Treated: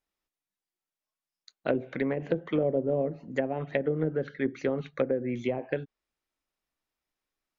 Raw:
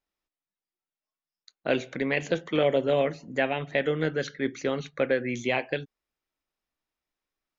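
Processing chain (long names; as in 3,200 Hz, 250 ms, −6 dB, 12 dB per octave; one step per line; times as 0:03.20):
treble cut that deepens with the level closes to 480 Hz, closed at −21.5 dBFS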